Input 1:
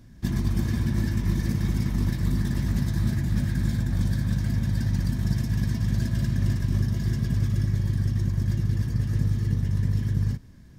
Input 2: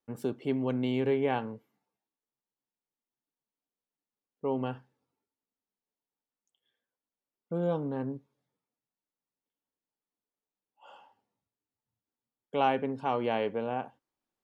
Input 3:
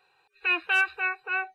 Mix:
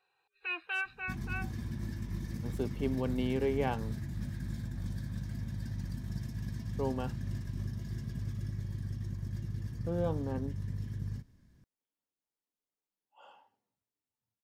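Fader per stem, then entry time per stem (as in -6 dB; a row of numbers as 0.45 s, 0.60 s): -13.5 dB, -3.5 dB, -11.5 dB; 0.85 s, 2.35 s, 0.00 s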